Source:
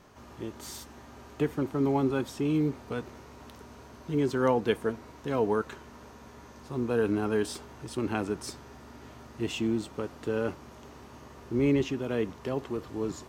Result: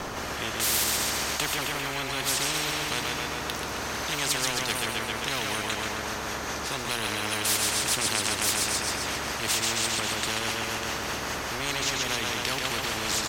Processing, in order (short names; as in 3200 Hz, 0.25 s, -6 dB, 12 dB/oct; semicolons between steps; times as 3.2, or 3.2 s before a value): notches 60/120/180/240 Hz; in parallel at -2 dB: vocal rider within 4 dB; on the sum: phaser 0.99 Hz, delay 2.9 ms, feedback 25%; rotary speaker horn 0.65 Hz, later 5 Hz, at 5.21; on a send: feedback echo 0.133 s, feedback 59%, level -6.5 dB; on the sum: spectral compressor 10:1